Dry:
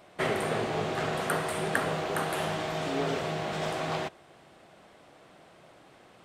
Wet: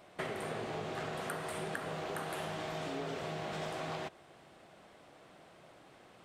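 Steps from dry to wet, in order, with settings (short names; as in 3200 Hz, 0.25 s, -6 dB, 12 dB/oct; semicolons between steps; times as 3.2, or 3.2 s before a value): compressor, threshold -33 dBFS, peak gain reduction 11.5 dB; gain -3 dB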